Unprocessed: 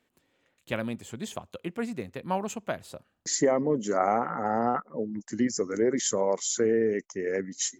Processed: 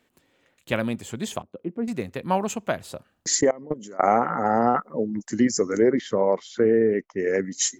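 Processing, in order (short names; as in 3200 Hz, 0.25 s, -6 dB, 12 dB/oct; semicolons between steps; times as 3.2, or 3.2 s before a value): 1.42–1.88 band-pass 280 Hz, Q 1.2; 3.41–4.03 level quantiser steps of 23 dB; 5.9–7.18 air absorption 340 m; gain +6 dB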